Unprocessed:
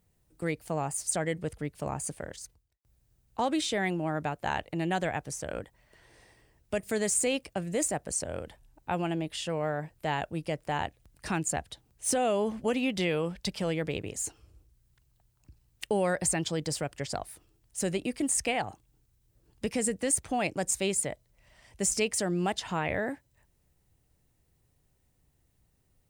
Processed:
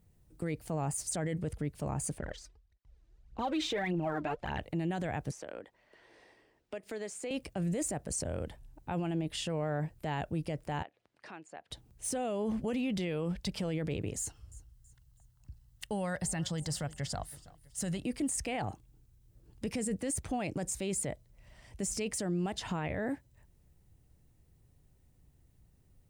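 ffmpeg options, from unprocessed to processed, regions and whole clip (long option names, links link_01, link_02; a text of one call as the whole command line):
ffmpeg -i in.wav -filter_complex "[0:a]asettb=1/sr,asplit=3[link_01][link_02][link_03];[link_01]atrim=end=2.184[link_04];[link_02]atrim=start=2.18:end=4.59,asetpts=PTS-STARTPTS,afade=type=in:duration=0.004:curve=qsin,afade=type=out:start_time=2.406:duration=0.004:curve=qsin,lowpass=4300,equalizer=frequency=110:width_type=o:width=1.7:gain=-8.5,aphaser=in_gain=1:out_gain=1:delay=3.4:decay=0.67:speed=1.7:type=triangular[link_05];[link_03]atrim=start=4.586[link_06];[link_04][link_05]acrossfade=duration=0.004:curve1=hsin:curve2=qsin[link_07];[link_07][link_06]acrossfade=duration=0.004:curve1=qsin:curve2=hsin,asettb=1/sr,asplit=3[link_08][link_09][link_10];[link_08]atrim=end=5.314[link_11];[link_09]atrim=start=5.31:end=7.31,asetpts=PTS-STARTPTS,afade=type=in:duration=0.004:curve=qsin,afade=type=out:start_time=1.996:duration=0.004:curve=qsin,acrossover=split=260 5300:gain=0.0794 1 0.224[link_12][link_13][link_14];[link_12][link_13][link_14]amix=inputs=3:normalize=0,acompressor=threshold=-45dB:ratio=2:attack=3.2:release=140:knee=1:detection=peak[link_15];[link_10]atrim=start=7.306[link_16];[link_11][link_15]acrossfade=duration=0.004:curve1=hsin:curve2=qsin[link_17];[link_17][link_16]acrossfade=duration=0.004:curve1=qsin:curve2=hsin,asettb=1/sr,asplit=3[link_18][link_19][link_20];[link_18]atrim=end=10.834[link_21];[link_19]atrim=start=10.83:end=11.71,asetpts=PTS-STARTPTS,afade=type=in:duration=0.004:curve=qsin,afade=type=out:start_time=0.876:duration=0.004:curve=qsin,acompressor=threshold=-47dB:ratio=2.5:attack=3.2:release=140:knee=1:detection=peak,highpass=450,lowpass=3500[link_22];[link_20]atrim=start=11.706[link_23];[link_21][link_22]acrossfade=duration=0.004:curve1=hsin:curve2=qsin[link_24];[link_24][link_23]acrossfade=duration=0.004:curve1=qsin:curve2=hsin,asettb=1/sr,asplit=3[link_25][link_26][link_27];[link_25]atrim=end=14.194[link_28];[link_26]atrim=start=14.19:end=18.04,asetpts=PTS-STARTPTS,afade=type=in:duration=0.004:curve=qsin,afade=type=out:start_time=3.846:duration=0.004:curve=qsin,equalizer=frequency=360:width_type=o:width=1.3:gain=-11,bandreject=frequency=2400:width=6.8,aecho=1:1:326|652|978:0.0794|0.0334|0.014,atrim=end_sample=169785[link_29];[link_27]atrim=start=18.036[link_30];[link_28][link_29]acrossfade=duration=0.004:curve1=hsin:curve2=qsin[link_31];[link_31][link_30]acrossfade=duration=0.004:curve1=qsin:curve2=hsin,lowshelf=frequency=360:gain=8.5,alimiter=level_in=0.5dB:limit=-24dB:level=0:latency=1:release=30,volume=-0.5dB,volume=-1.5dB" out.wav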